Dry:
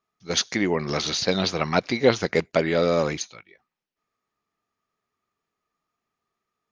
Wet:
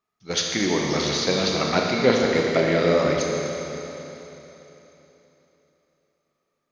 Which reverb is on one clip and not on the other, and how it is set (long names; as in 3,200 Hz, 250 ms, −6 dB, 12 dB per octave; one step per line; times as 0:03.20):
four-comb reverb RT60 3.5 s, combs from 27 ms, DRR −1 dB
level −1.5 dB